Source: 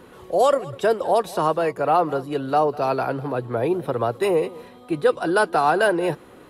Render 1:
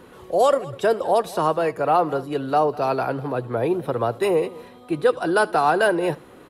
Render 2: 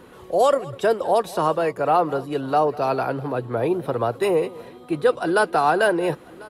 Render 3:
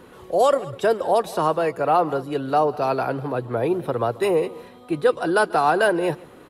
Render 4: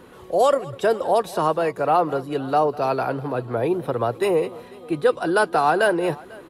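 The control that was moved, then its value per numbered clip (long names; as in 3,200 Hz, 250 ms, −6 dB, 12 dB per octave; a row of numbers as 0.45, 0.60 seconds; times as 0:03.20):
single-tap delay, delay time: 78, 1,045, 140, 496 milliseconds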